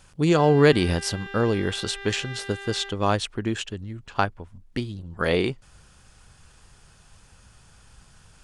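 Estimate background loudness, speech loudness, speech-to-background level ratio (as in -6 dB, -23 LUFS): -38.5 LUFS, -24.5 LUFS, 14.0 dB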